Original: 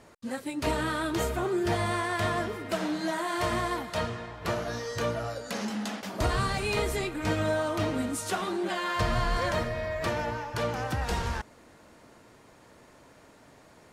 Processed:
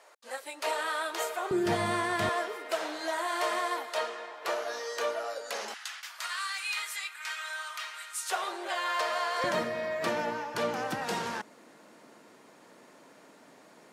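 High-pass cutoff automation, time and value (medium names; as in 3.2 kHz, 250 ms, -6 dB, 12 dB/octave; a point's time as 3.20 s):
high-pass 24 dB/octave
530 Hz
from 1.51 s 120 Hz
from 2.29 s 430 Hz
from 5.74 s 1.3 kHz
from 8.30 s 500 Hz
from 9.44 s 180 Hz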